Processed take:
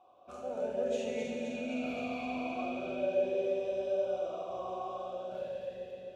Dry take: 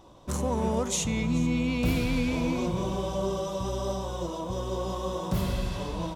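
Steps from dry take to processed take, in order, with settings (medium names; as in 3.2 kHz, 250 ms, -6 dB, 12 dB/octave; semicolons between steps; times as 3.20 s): fade out at the end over 1.43 s; band-stop 1.9 kHz, Q 19; echo whose repeats swap between lows and highs 130 ms, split 850 Hz, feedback 81%, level -4 dB; reverberation RT60 2.2 s, pre-delay 4 ms, DRR -1 dB; talking filter a-e 0.42 Hz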